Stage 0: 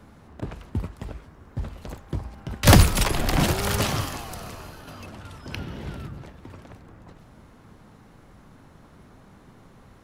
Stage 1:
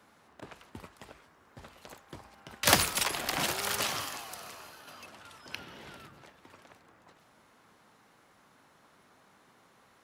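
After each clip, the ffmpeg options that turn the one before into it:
ffmpeg -i in.wav -af "highpass=frequency=1000:poles=1,volume=-3dB" out.wav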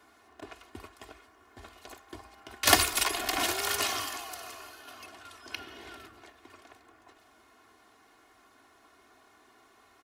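ffmpeg -i in.wav -af "equalizer=frequency=140:width=3.3:gain=-10.5,aecho=1:1:2.8:0.75" out.wav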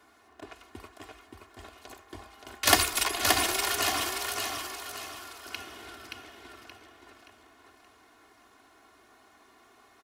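ffmpeg -i in.wav -af "aecho=1:1:575|1150|1725|2300|2875:0.631|0.24|0.0911|0.0346|0.0132" out.wav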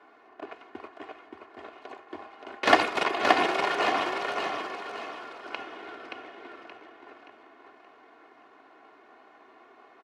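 ffmpeg -i in.wav -filter_complex "[0:a]asplit=2[link_01][link_02];[link_02]acrusher=samples=24:mix=1:aa=0.000001,volume=-6dB[link_03];[link_01][link_03]amix=inputs=2:normalize=0,highpass=340,lowpass=2200,volume=4.5dB" out.wav

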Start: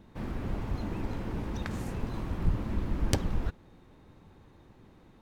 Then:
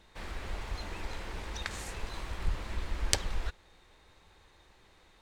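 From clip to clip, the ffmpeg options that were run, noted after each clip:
ffmpeg -i in.wav -af "equalizer=frequency=125:width_type=o:width=1:gain=-12,equalizer=frequency=250:width_type=o:width=1:gain=-12,equalizer=frequency=2000:width_type=o:width=1:gain=5,equalizer=frequency=4000:width_type=o:width=1:gain=7,equalizer=frequency=8000:width_type=o:width=1:gain=9,volume=-1.5dB" out.wav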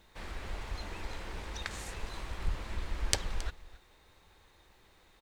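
ffmpeg -i in.wav -af "acrusher=bits=11:mix=0:aa=0.000001,aecho=1:1:271:0.126,volume=-1.5dB" out.wav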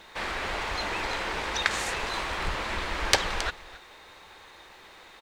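ffmpeg -i in.wav -filter_complex "[0:a]asplit=2[link_01][link_02];[link_02]highpass=frequency=720:poles=1,volume=19dB,asoftclip=type=tanh:threshold=-2.5dB[link_03];[link_01][link_03]amix=inputs=2:normalize=0,lowpass=frequency=3700:poles=1,volume=-6dB,volume=3.5dB" out.wav

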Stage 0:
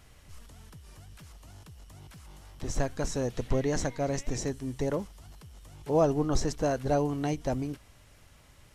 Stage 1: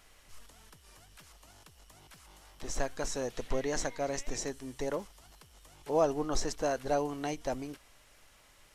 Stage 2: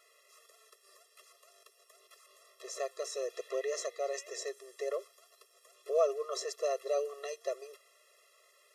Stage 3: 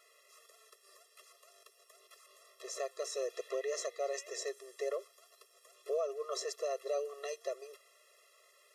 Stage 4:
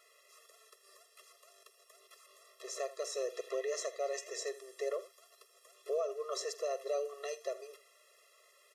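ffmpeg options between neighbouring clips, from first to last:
ffmpeg -i in.wav -af "equalizer=frequency=99:width=0.44:gain=-14.5" out.wav
ffmpeg -i in.wav -af "afftfilt=real='re*eq(mod(floor(b*sr/1024/350),2),1)':imag='im*eq(mod(floor(b*sr/1024/350),2),1)':win_size=1024:overlap=0.75" out.wav
ffmpeg -i in.wav -af "alimiter=level_in=2.5dB:limit=-24dB:level=0:latency=1:release=319,volume=-2.5dB" out.wav
ffmpeg -i in.wav -af "aecho=1:1:46|79:0.126|0.141" out.wav

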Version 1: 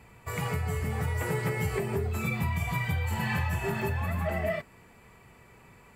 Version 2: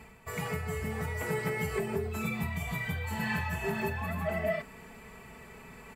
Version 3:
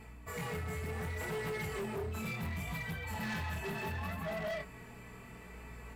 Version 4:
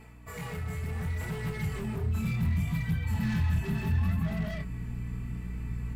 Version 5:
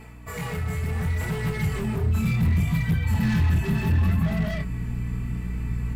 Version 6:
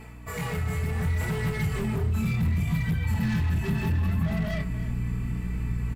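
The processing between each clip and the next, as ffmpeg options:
ffmpeg -i in.wav -af "aecho=1:1:4.6:0.54,areverse,acompressor=mode=upward:threshold=-36dB:ratio=2.5,areverse,volume=-3.5dB" out.wav
ffmpeg -i in.wav -af "aeval=exprs='val(0)+0.00398*(sin(2*PI*60*n/s)+sin(2*PI*2*60*n/s)/2+sin(2*PI*3*60*n/s)/3+sin(2*PI*4*60*n/s)/4+sin(2*PI*5*60*n/s)/5)':channel_layout=same,flanger=delay=18.5:depth=7.8:speed=0.69,asoftclip=type=hard:threshold=-35dB" out.wav
ffmpeg -i in.wav -af "equalizer=frequency=62:width=2.9:gain=-13.5,aeval=exprs='val(0)+0.00141*(sin(2*PI*60*n/s)+sin(2*PI*2*60*n/s)/2+sin(2*PI*3*60*n/s)/3+sin(2*PI*4*60*n/s)/4+sin(2*PI*5*60*n/s)/5)':channel_layout=same,asubboost=boost=12:cutoff=170" out.wav
ffmpeg -i in.wav -af "asoftclip=type=hard:threshold=-23dB,volume=7dB" out.wav
ffmpeg -i in.wav -af "acompressor=threshold=-22dB:ratio=6,aecho=1:1:294:0.158" out.wav

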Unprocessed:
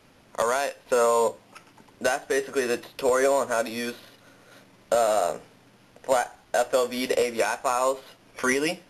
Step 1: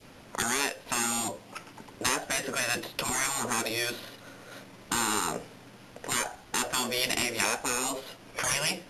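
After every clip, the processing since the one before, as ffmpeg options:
ffmpeg -i in.wav -af "adynamicequalizer=threshold=0.0126:dfrequency=1200:dqfactor=0.81:tfrequency=1200:tqfactor=0.81:attack=5:release=100:ratio=0.375:range=2:mode=cutabove:tftype=bell,afftfilt=real='re*lt(hypot(re,im),0.112)':imag='im*lt(hypot(re,im),0.112)':win_size=1024:overlap=0.75,volume=5.5dB" out.wav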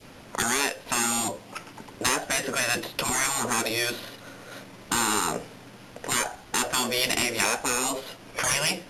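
ffmpeg -i in.wav -af "asoftclip=type=tanh:threshold=-13.5dB,volume=4dB" out.wav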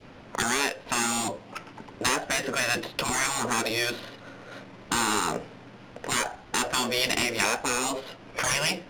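ffmpeg -i in.wav -af "adynamicsmooth=sensitivity=7:basefreq=3700" out.wav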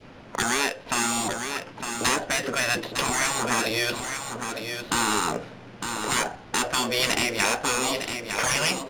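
ffmpeg -i in.wav -af "aecho=1:1:907:0.447,volume=1.5dB" out.wav

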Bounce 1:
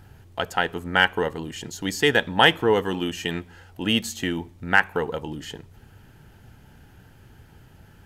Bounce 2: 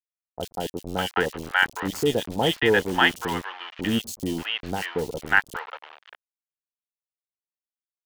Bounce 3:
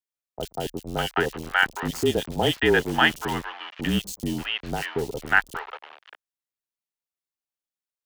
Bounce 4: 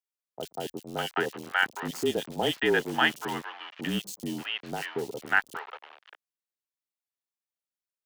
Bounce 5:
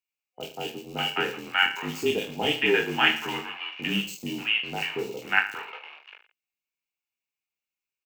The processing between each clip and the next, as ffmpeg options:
ffmpeg -i in.wav -filter_complex "[0:a]aeval=exprs='val(0)*gte(abs(val(0)),0.0355)':channel_layout=same,acrossover=split=760|3300[link_01][link_02][link_03];[link_03]adelay=30[link_04];[link_02]adelay=590[link_05];[link_01][link_05][link_04]amix=inputs=3:normalize=0" out.wav
ffmpeg -i in.wav -af "afreqshift=-33" out.wav
ffmpeg -i in.wav -af "highpass=170,volume=-4.5dB" out.wav
ffmpeg -i in.wav -filter_complex "[0:a]superequalizer=8b=0.708:12b=3.55:16b=0.398,asplit=2[link_01][link_02];[link_02]aecho=0:1:20|45|76.25|115.3|164.1:0.631|0.398|0.251|0.158|0.1[link_03];[link_01][link_03]amix=inputs=2:normalize=0,volume=-1.5dB" out.wav

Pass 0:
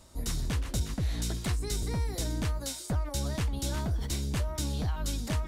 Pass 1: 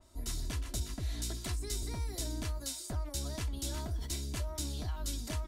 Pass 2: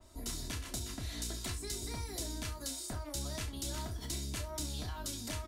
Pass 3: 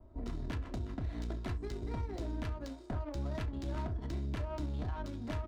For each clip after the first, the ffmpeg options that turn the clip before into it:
ffmpeg -i in.wav -af "aecho=1:1:3:0.48,adynamicequalizer=threshold=0.00282:dfrequency=3300:dqfactor=0.7:tfrequency=3300:tqfactor=0.7:attack=5:release=100:ratio=0.375:range=2.5:mode=boostabove:tftype=highshelf,volume=-7.5dB" out.wav
ffmpeg -i in.wav -filter_complex "[0:a]acrossover=split=94|1100[link_01][link_02][link_03];[link_01]acompressor=threshold=-49dB:ratio=4[link_04];[link_02]acompressor=threshold=-45dB:ratio=4[link_05];[link_03]acompressor=threshold=-41dB:ratio=4[link_06];[link_04][link_05][link_06]amix=inputs=3:normalize=0,asplit=2[link_07][link_08];[link_08]aecho=0:1:30|67:0.376|0.178[link_09];[link_07][link_09]amix=inputs=2:normalize=0,volume=2.5dB" out.wav
ffmpeg -i in.wav -af "adynamicsmooth=sensitivity=7:basefreq=710,volume=4dB" out.wav

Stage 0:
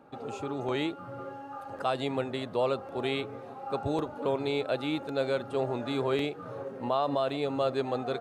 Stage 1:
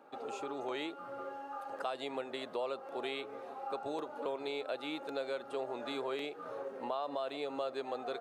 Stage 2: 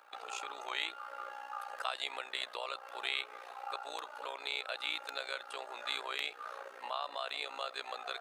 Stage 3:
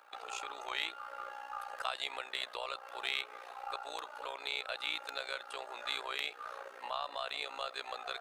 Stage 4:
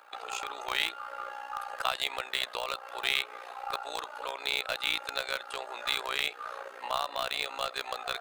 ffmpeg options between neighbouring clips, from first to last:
ffmpeg -i in.wav -af "highpass=370,acompressor=threshold=-36dB:ratio=2.5,volume=-1dB" out.wav
ffmpeg -i in.wav -af "tremolo=f=60:d=0.824,highpass=1400,volume=11.5dB" out.wav
ffmpeg -i in.wav -af "aeval=exprs='0.133*(cos(1*acos(clip(val(0)/0.133,-1,1)))-cos(1*PI/2))+0.00841*(cos(4*acos(clip(val(0)/0.133,-1,1)))-cos(4*PI/2))+0.00596*(cos(6*acos(clip(val(0)/0.133,-1,1)))-cos(6*PI/2))':channel_layout=same" out.wav
ffmpeg -i in.wav -filter_complex "[0:a]bandreject=frequency=5700:width=23,asplit=2[link_01][link_02];[link_02]acrusher=bits=4:mix=0:aa=0.000001,volume=-9.5dB[link_03];[link_01][link_03]amix=inputs=2:normalize=0,volume=5dB" out.wav

